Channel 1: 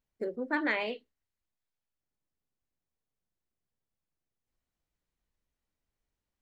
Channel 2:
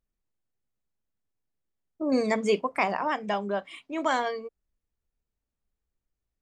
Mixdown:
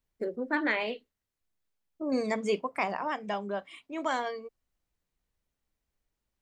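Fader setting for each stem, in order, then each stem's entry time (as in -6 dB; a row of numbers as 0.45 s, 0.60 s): +1.5 dB, -4.5 dB; 0.00 s, 0.00 s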